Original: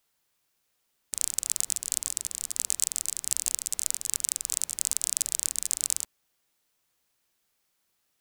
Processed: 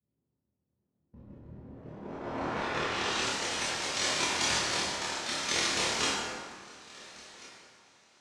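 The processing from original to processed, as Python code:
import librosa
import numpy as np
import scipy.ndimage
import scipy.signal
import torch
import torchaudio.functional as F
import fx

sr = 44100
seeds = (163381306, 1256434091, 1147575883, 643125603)

y = fx.spec_quant(x, sr, step_db=15)
y = fx.over_compress(y, sr, threshold_db=-34.0, ratio=-0.5)
y = fx.rotary(y, sr, hz=0.65)
y = fx.echo_stepped(y, sr, ms=347, hz=350.0, octaves=1.4, feedback_pct=70, wet_db=-11.0)
y = fx.noise_vocoder(y, sr, seeds[0], bands=1)
y = fx.doubler(y, sr, ms=26.0, db=-2.5)
y = fx.rev_plate(y, sr, seeds[1], rt60_s=1.8, hf_ratio=0.6, predelay_ms=0, drr_db=-9.0)
y = fx.filter_sweep_lowpass(y, sr, from_hz=160.0, to_hz=6300.0, start_s=1.48, end_s=3.35, q=0.79)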